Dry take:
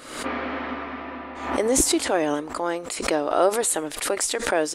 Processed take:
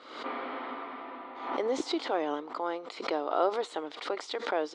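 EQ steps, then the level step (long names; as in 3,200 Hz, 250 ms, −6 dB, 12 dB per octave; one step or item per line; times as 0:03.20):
loudspeaker in its box 390–4,000 Hz, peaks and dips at 590 Hz −5 dB, 1,700 Hz −9 dB, 2,600 Hz −8 dB
−4.0 dB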